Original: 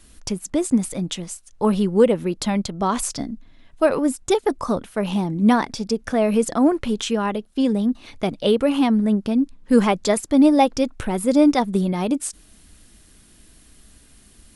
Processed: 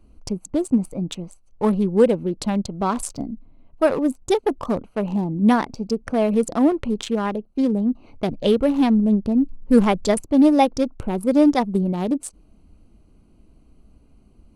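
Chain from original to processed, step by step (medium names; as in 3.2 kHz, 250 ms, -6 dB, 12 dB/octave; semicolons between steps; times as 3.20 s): local Wiener filter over 25 samples; 8.29–10.26 s: bass shelf 88 Hz +10.5 dB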